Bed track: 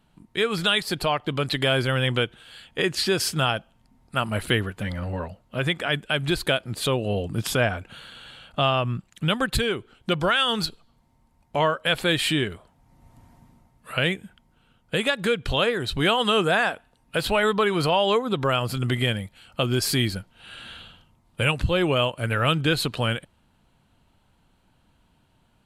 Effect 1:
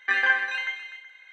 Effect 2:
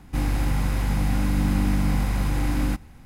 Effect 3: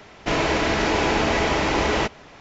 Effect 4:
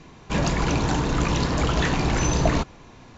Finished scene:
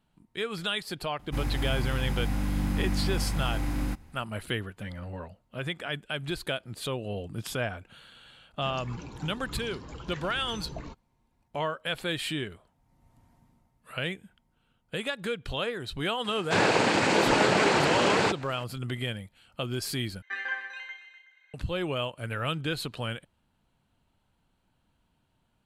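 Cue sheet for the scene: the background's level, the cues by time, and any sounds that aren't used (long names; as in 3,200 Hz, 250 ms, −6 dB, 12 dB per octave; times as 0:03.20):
bed track −9 dB
0:01.19: mix in 2 −6.5 dB
0:08.31: mix in 4 −17.5 dB + spectral dynamics exaggerated over time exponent 1.5
0:16.24: mix in 3 −1.5 dB + cochlear-implant simulation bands 8
0:20.22: overwrite with 1 −11.5 dB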